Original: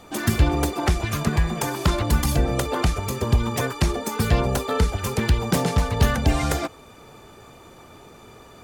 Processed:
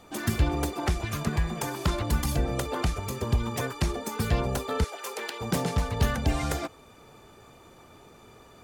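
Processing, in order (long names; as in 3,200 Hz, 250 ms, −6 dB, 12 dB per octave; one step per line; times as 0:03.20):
0:04.84–0:05.41: high-pass filter 420 Hz 24 dB per octave
level −6 dB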